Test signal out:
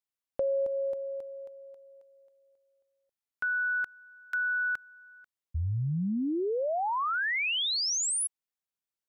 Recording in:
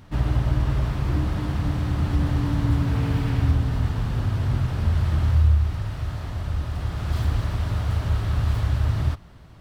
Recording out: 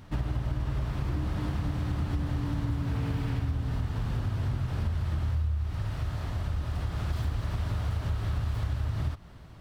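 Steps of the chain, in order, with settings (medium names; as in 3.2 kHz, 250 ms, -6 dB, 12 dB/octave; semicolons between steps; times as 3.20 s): compression 5:1, threshold -25 dBFS; trim -1.5 dB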